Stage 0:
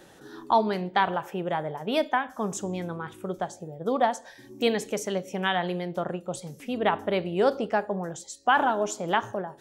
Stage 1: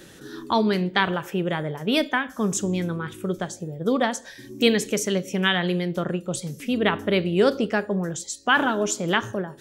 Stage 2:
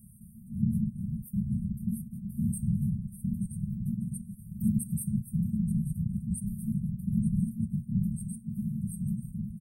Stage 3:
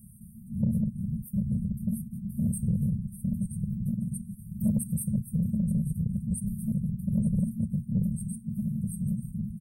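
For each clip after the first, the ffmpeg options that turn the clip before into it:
ffmpeg -i in.wav -af "equalizer=frequency=790:width_type=o:width=1.1:gain=-13,volume=8.5dB" out.wav
ffmpeg -i in.wav -filter_complex "[0:a]afftfilt=real='hypot(re,im)*cos(2*PI*random(0))':imag='hypot(re,im)*sin(2*PI*random(1))':win_size=512:overlap=0.75,asplit=2[link_01][link_02];[link_02]adelay=882,lowpass=frequency=4800:poles=1,volume=-9dB,asplit=2[link_03][link_04];[link_04]adelay=882,lowpass=frequency=4800:poles=1,volume=0.28,asplit=2[link_05][link_06];[link_06]adelay=882,lowpass=frequency=4800:poles=1,volume=0.28[link_07];[link_01][link_03][link_05][link_07]amix=inputs=4:normalize=0,afftfilt=real='re*(1-between(b*sr/4096,230,8300))':imag='im*(1-between(b*sr/4096,230,8300))':win_size=4096:overlap=0.75,volume=4.5dB" out.wav
ffmpeg -i in.wav -af "asoftclip=type=tanh:threshold=-18.5dB,volume=2.5dB" out.wav

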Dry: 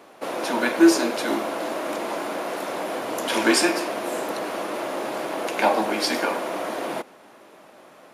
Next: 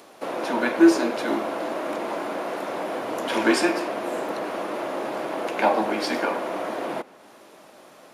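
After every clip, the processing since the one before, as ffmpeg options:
ffmpeg -i in.wav -filter_complex "[0:a]highshelf=frequency=3900:gain=-10,acrossover=split=4000[link_01][link_02];[link_02]acompressor=mode=upward:threshold=-48dB:ratio=2.5[link_03];[link_01][link_03]amix=inputs=2:normalize=0" out.wav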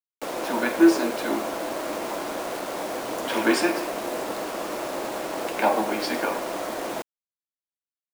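ffmpeg -i in.wav -filter_complex "[0:a]acrossover=split=1900[link_01][link_02];[link_01]aeval=exprs='sgn(val(0))*max(abs(val(0))-0.00316,0)':channel_layout=same[link_03];[link_03][link_02]amix=inputs=2:normalize=0,acrusher=bits=5:mix=0:aa=0.000001,volume=-1dB" out.wav

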